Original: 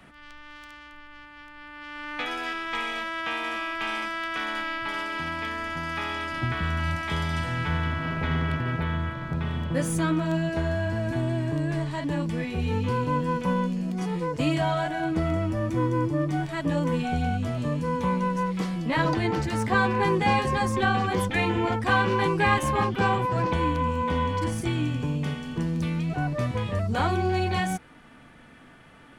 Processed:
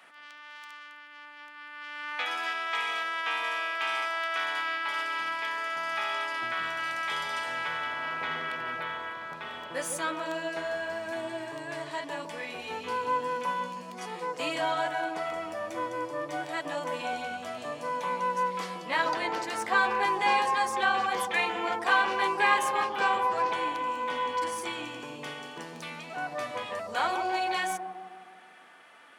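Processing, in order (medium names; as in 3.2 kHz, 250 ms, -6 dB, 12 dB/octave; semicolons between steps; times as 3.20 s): high-pass 680 Hz 12 dB/octave; bucket-brigade echo 156 ms, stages 1024, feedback 58%, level -6 dB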